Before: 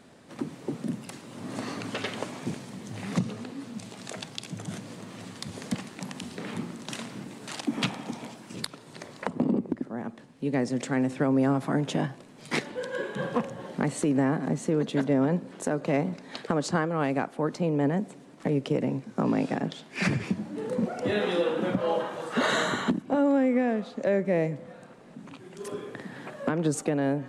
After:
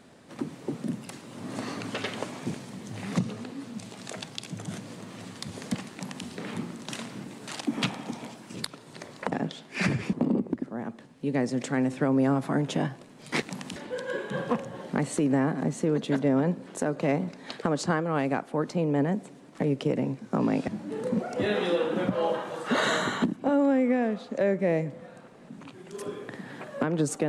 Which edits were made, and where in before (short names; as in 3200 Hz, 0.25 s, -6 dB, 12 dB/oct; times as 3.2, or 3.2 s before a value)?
5.92–6.26 copy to 12.61
19.53–20.34 move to 9.32